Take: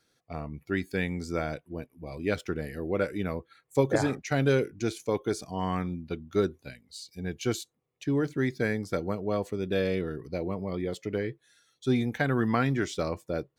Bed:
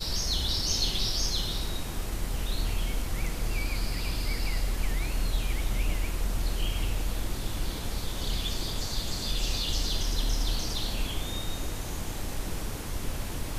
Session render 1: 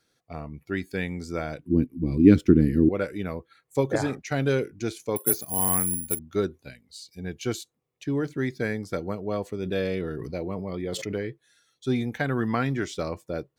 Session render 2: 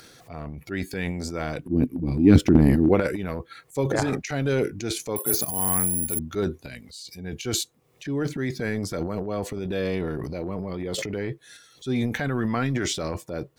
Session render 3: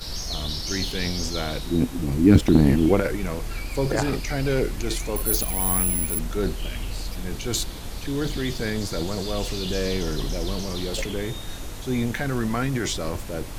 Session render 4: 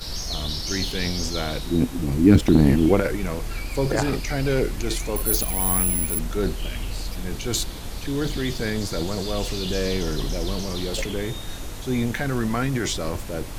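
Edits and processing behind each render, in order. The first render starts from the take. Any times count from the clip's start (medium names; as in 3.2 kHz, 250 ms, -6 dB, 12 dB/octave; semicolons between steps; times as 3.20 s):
1.59–2.89 s: resonant low shelf 430 Hz +13.5 dB, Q 3; 5.16–6.19 s: careless resampling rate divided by 4×, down filtered, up zero stuff; 9.62–11.15 s: decay stretcher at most 27 dB/s
upward compressor, threshold -35 dBFS; transient shaper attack -3 dB, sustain +12 dB
add bed -1.5 dB
trim +1 dB; peak limiter -3 dBFS, peak gain reduction 3 dB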